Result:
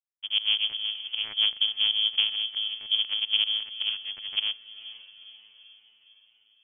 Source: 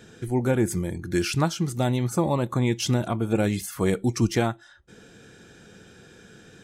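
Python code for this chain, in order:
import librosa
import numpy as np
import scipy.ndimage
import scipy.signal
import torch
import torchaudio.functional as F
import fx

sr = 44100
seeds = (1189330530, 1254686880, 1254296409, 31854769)

p1 = fx.delta_hold(x, sr, step_db=-25.5)
p2 = fx.vocoder(p1, sr, bands=4, carrier='saw', carrier_hz=106.0)
p3 = fx.level_steps(p2, sr, step_db=10, at=(2.29, 2.99))
p4 = fx.mod_noise(p3, sr, seeds[0], snr_db=25)
p5 = fx.tube_stage(p4, sr, drive_db=31.0, bias=0.65, at=(3.89, 4.31))
p6 = fx.volume_shaper(p5, sr, bpm=157, per_beat=2, depth_db=-21, release_ms=106.0, shape='fast start')
p7 = p6 + fx.echo_diffused(p6, sr, ms=485, feedback_pct=53, wet_db=-15, dry=0)
p8 = fx.freq_invert(p7, sr, carrier_hz=3300)
y = p8 * 10.0 ** (-1.0 / 20.0)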